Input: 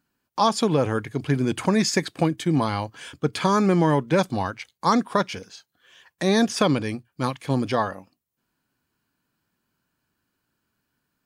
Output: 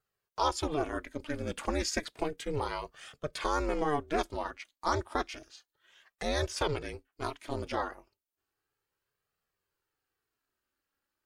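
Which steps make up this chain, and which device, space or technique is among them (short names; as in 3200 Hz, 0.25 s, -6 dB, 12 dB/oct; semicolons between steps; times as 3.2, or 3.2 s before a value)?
HPF 300 Hz 6 dB/oct; alien voice (ring modulator 150 Hz; flange 0.32 Hz, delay 1.5 ms, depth 2.2 ms, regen -32%); gain -2 dB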